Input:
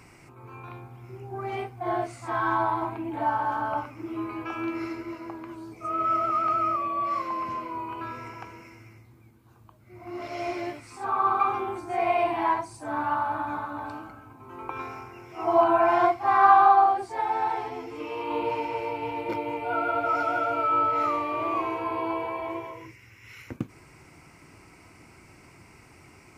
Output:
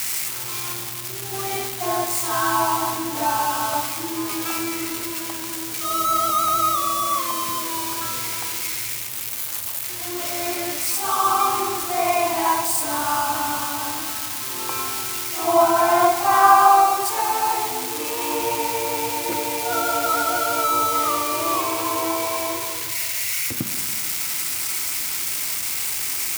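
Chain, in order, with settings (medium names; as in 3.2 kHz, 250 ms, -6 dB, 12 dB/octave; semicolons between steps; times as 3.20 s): zero-crossing glitches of -19 dBFS; Schroeder reverb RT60 2.2 s, combs from 31 ms, DRR 7.5 dB; trim +3.5 dB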